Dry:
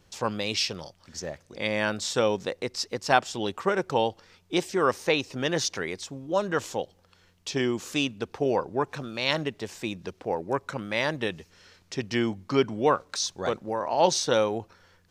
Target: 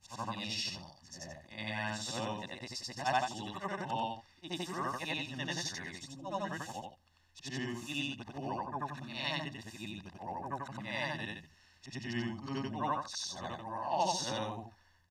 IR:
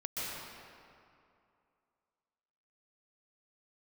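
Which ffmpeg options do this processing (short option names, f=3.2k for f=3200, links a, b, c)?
-af "afftfilt=real='re':imag='-im':win_size=8192:overlap=0.75,aecho=1:1:1.1:0.86,volume=-7dB"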